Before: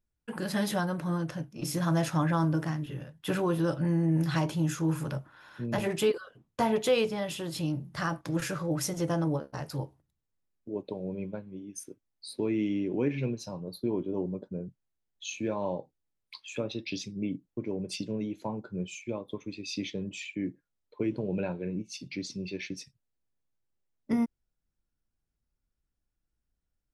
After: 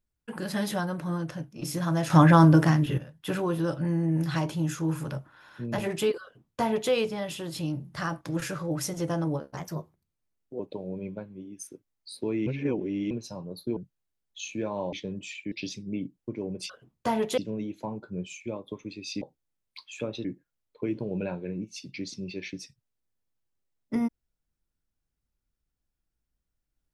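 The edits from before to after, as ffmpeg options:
-filter_complex "[0:a]asplit=14[s0][s1][s2][s3][s4][s5][s6][s7][s8][s9][s10][s11][s12][s13];[s0]atrim=end=2.102[s14];[s1]atrim=start=2.098:end=2.982,asetpts=PTS-STARTPTS,volume=3.35[s15];[s2]atrim=start=2.978:end=9.574[s16];[s3]atrim=start=9.57:end=10.76,asetpts=PTS-STARTPTS,asetrate=51156,aresample=44100[s17];[s4]atrim=start=10.756:end=12.632[s18];[s5]atrim=start=12.628:end=13.272,asetpts=PTS-STARTPTS,areverse[s19];[s6]atrim=start=13.268:end=13.932[s20];[s7]atrim=start=14.618:end=15.782[s21];[s8]atrim=start=19.828:end=20.422[s22];[s9]atrim=start=16.808:end=17.992[s23];[s10]atrim=start=6.228:end=6.912[s24];[s11]atrim=start=17.988:end=19.832[s25];[s12]atrim=start=15.778:end=16.812[s26];[s13]atrim=start=20.418[s27];[s14][s15]acrossfade=d=0.004:c1=hsin:c2=hsin[s28];[s28][s16]acrossfade=d=0.004:c1=hsin:c2=hsin[s29];[s29][s17]acrossfade=d=0.004:c1=hsin:c2=hsin[s30];[s30][s18]acrossfade=d=0.004:c1=hsin:c2=hsin[s31];[s31][s19]acrossfade=d=0.004:c1=hsin:c2=hsin[s32];[s32][s20]acrossfade=d=0.004:c1=hsin:c2=hsin[s33];[s33][s21]acrossfade=d=0.004:c1=hsin:c2=hsin[s34];[s34][s22]acrossfade=d=0.004:c1=hsin:c2=hsin[s35];[s35][s23]acrossfade=d=0.004:c1=hsin:c2=hsin[s36];[s36][s24]acrossfade=d=0.004:c1=hsin:c2=hsin[s37];[s37][s25]acrossfade=d=0.004:c1=hsin:c2=hsin[s38];[s38][s26]acrossfade=d=0.004:c1=hsin:c2=hsin[s39];[s39][s27]acrossfade=d=0.004:c1=hsin:c2=hsin"

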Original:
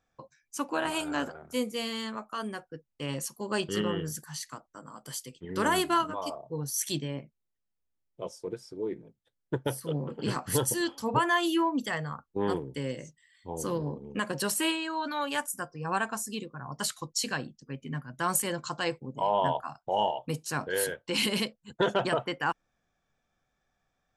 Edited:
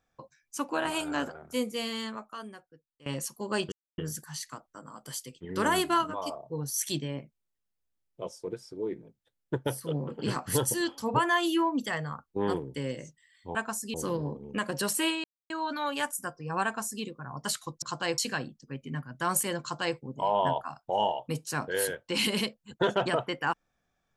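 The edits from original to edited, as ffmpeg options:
-filter_complex "[0:a]asplit=9[s0][s1][s2][s3][s4][s5][s6][s7][s8];[s0]atrim=end=3.06,asetpts=PTS-STARTPTS,afade=t=out:st=2.04:d=1.02:c=qua:silence=0.105925[s9];[s1]atrim=start=3.06:end=3.72,asetpts=PTS-STARTPTS,afade=t=in:d=0.004:c=hsin:silence=0.105925,afade=t=out:st=0.656:d=0.004:c=hsin[s10];[s2]atrim=start=3.72:end=3.98,asetpts=PTS-STARTPTS,volume=0[s11];[s3]atrim=start=3.98:end=13.552,asetpts=PTS-STARTPTS,afade=t=in:d=0.004:c=hsin[s12];[s4]atrim=start=15.988:end=16.382[s13];[s5]atrim=start=13.548:end=14.85,asetpts=PTS-STARTPTS,afade=t=out:st=1.298:d=0.004:c=hsin,apad=pad_dur=0.26[s14];[s6]atrim=start=14.85:end=17.172,asetpts=PTS-STARTPTS,afade=t=in:d=0.004:c=hsin[s15];[s7]atrim=start=18.598:end=18.962[s16];[s8]atrim=start=17.168[s17];[s9][s10][s11][s12]concat=n=4:v=0:a=1[s18];[s18][s13]acrossfade=d=0.004:c1=hsin:c2=hsin[s19];[s14][s15]concat=n=2:v=0:a=1[s20];[s19][s20]acrossfade=d=0.004:c1=hsin:c2=hsin[s21];[s21][s16]acrossfade=d=0.004:c1=hsin:c2=hsin[s22];[s22][s17]acrossfade=d=0.004:c1=hsin:c2=hsin"

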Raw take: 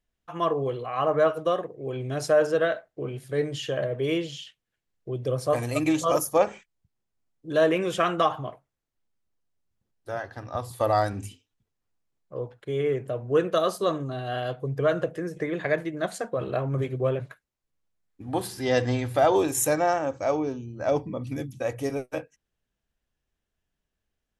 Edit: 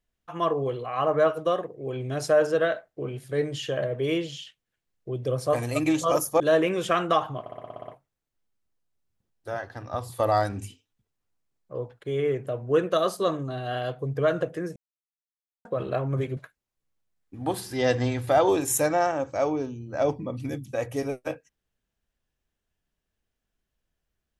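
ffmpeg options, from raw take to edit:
-filter_complex "[0:a]asplit=13[s0][s1][s2][s3][s4][s5][s6][s7][s8][s9][s10][s11][s12];[s0]atrim=end=6.402[s13];[s1]atrim=start=7.488:end=8.552[s14];[s2]atrim=start=8.488:end=8.552[s15];[s3]atrim=start=8.488:end=8.552[s16];[s4]atrim=start=8.488:end=8.552[s17];[s5]atrim=start=8.488:end=8.552[s18];[s6]atrim=start=8.488:end=8.552[s19];[s7]atrim=start=8.488:end=8.552[s20];[s8]atrim=start=8.488:end=8.552[s21];[s9]atrim=start=8.488:end=15.37,asetpts=PTS-STARTPTS,afade=t=out:st=6.878:d=0.004:c=hsin[s22];[s10]atrim=start=15.37:end=16.26,asetpts=PTS-STARTPTS,volume=0[s23];[s11]atrim=start=16.26:end=16.982,asetpts=PTS-STARTPTS,afade=t=in:d=0.004:c=hsin[s24];[s12]atrim=start=17.238[s25];[s13][s14]acrossfade=d=0.004:c1=hsin:c2=hsin[s26];[s26][s15]acrossfade=d=0.004:c1=hsin:c2=hsin[s27];[s27][s16]acrossfade=d=0.004:c1=hsin:c2=hsin[s28];[s28][s17]acrossfade=d=0.004:c1=hsin:c2=hsin[s29];[s29][s18]acrossfade=d=0.004:c1=hsin:c2=hsin[s30];[s30][s19]acrossfade=d=0.004:c1=hsin:c2=hsin[s31];[s31][s20]acrossfade=d=0.004:c1=hsin:c2=hsin[s32];[s32][s21]acrossfade=d=0.004:c1=hsin:c2=hsin[s33];[s22][s23][s24]concat=n=3:v=0:a=1[s34];[s33][s34]acrossfade=d=0.004:c1=hsin:c2=hsin[s35];[s35][s25]acrossfade=d=0.004:c1=hsin:c2=hsin"

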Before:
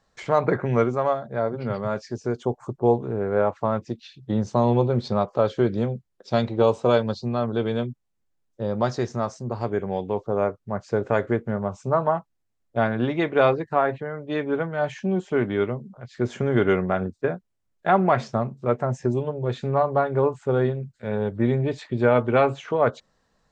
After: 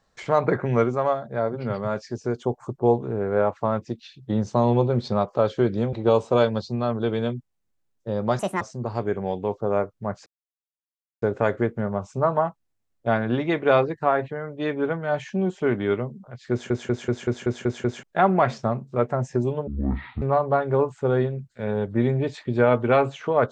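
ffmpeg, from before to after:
-filter_complex "[0:a]asplit=15[s0][s1][s2][s3][s4][s5][s6][s7][s8][s9][s10][s11][s12][s13][s14];[s0]atrim=end=5.932[s15];[s1]atrim=start=6.458:end=8.924[s16];[s2]atrim=start=8.92:end=9.27,asetpts=PTS-STARTPTS,asetrate=69678,aresample=44100[s17];[s3]atrim=start=9.266:end=10.92,asetpts=PTS-STARTPTS,afade=t=out:st=1.65:d=0.004:c=hsin,apad=pad_dur=0.96[s18];[s4]atrim=start=10.92:end=16.402,asetpts=PTS-STARTPTS,afade=t=in:d=0.004:c=hsin[s19];[s5]atrim=start=16.208:end=16.402[s20];[s6]atrim=start=16.208:end=16.402[s21];[s7]atrim=start=16.208:end=16.402[s22];[s8]atrim=start=16.208:end=16.402[s23];[s9]atrim=start=16.208:end=16.402[s24];[s10]atrim=start=16.208:end=16.402[s25];[s11]atrim=start=16.208:end=16.402[s26];[s12]atrim=start=17.728:end=19.374[s27];[s13]atrim=start=19.37:end=19.66,asetpts=PTS-STARTPTS,asetrate=23373,aresample=44100,atrim=end_sample=24130,asetpts=PTS-STARTPTS[s28];[s14]atrim=start=19.656[s29];[s15][s16]acrossfade=d=0.004:c1=hsin:c2=hsin[s30];[s30][s17]acrossfade=d=0.004:c1=hsin:c2=hsin[s31];[s18][s19]concat=n=2:v=0:a=1[s32];[s31][s32]acrossfade=d=0.004:c1=hsin:c2=hsin[s33];[s33][s20]acrossfade=d=0.004:c1=hsin:c2=hsin[s34];[s34][s21]acrossfade=d=0.004:c1=hsin:c2=hsin[s35];[s35][s22]acrossfade=d=0.004:c1=hsin:c2=hsin[s36];[s36][s23]acrossfade=d=0.004:c1=hsin:c2=hsin[s37];[s37][s24]acrossfade=d=0.004:c1=hsin:c2=hsin[s38];[s38][s25]acrossfade=d=0.004:c1=hsin:c2=hsin[s39];[s39][s26]acrossfade=d=0.004:c1=hsin:c2=hsin[s40];[s40][s27]acrossfade=d=0.004:c1=hsin:c2=hsin[s41];[s41][s28]acrossfade=d=0.004:c1=hsin:c2=hsin[s42];[s42][s29]acrossfade=d=0.004:c1=hsin:c2=hsin"

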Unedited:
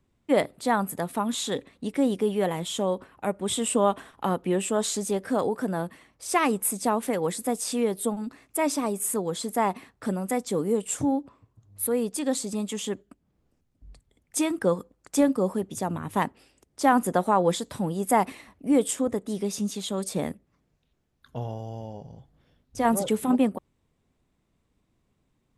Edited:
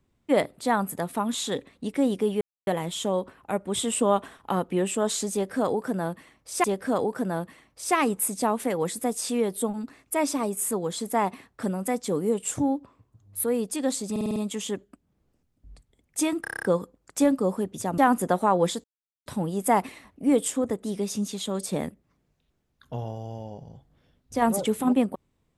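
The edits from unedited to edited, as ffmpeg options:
-filter_complex "[0:a]asplit=17[s0][s1][s2][s3][s4][s5][s6][s7][s8][s9][s10][s11][s12][s13][s14][s15][s16];[s0]atrim=end=2.41,asetpts=PTS-STARTPTS,afade=t=out:st=2.406:d=0.004:c=hsin,apad=pad_dur=0.26[s17];[s1]atrim=start=2.41:end=6.382,asetpts=PTS-STARTPTS,afade=t=in:d=0.004:c=hsin[s18];[s2]atrim=start=5.068:end=12.592[s19];[s3]atrim=start=12.538:end=12.592[s20];[s4]atrim=start=12.538:end=12.592[s21];[s5]atrim=start=12.538:end=12.592[s22];[s6]atrim=start=12.538:end=12.592[s23];[s7]atrim=start=12.538:end=14.632[s24];[s8]atrim=start=14.598:end=14.632[s25];[s9]atrim=start=14.598:end=14.632[s26];[s10]atrim=start=14.598:end=14.632[s27];[s11]atrim=start=14.598:end=14.632[s28];[s12]atrim=start=14.598:end=14.632[s29];[s13]atrim=start=14.598:end=14.632[s30];[s14]atrim=start=14.598:end=15.952[s31];[s15]atrim=start=16.828:end=17.69,asetpts=PTS-STARTPTS,afade=t=out:st=0.858:d=0.004:c=hsin,apad=pad_dur=0.42[s32];[s16]atrim=start=17.69,asetpts=PTS-STARTPTS,afade=t=in:d=0.004:c=hsin[s33];[s17][s18]concat=n=2:v=0:a=1[s34];[s34][s19]acrossfade=d=0.004:c1=hsin:c2=hsin[s35];[s35][s20]acrossfade=d=0.004:c1=hsin:c2=hsin[s36];[s36][s21]acrossfade=d=0.004:c1=hsin:c2=hsin[s37];[s37][s22]acrossfade=d=0.004:c1=hsin:c2=hsin[s38];[s38][s23]acrossfade=d=0.004:c1=hsin:c2=hsin[s39];[s39][s24]acrossfade=d=0.004:c1=hsin:c2=hsin[s40];[s40][s25]acrossfade=d=0.004:c1=hsin:c2=hsin[s41];[s41][s26]acrossfade=d=0.004:c1=hsin:c2=hsin[s42];[s42][s27]acrossfade=d=0.004:c1=hsin:c2=hsin[s43];[s43][s28]acrossfade=d=0.004:c1=hsin:c2=hsin[s44];[s44][s29]acrossfade=d=0.004:c1=hsin:c2=hsin[s45];[s45][s30]acrossfade=d=0.004:c1=hsin:c2=hsin[s46];[s46][s31]acrossfade=d=0.004:c1=hsin:c2=hsin[s47];[s32][s33]concat=n=2:v=0:a=1[s48];[s47][s48]acrossfade=d=0.004:c1=hsin:c2=hsin"

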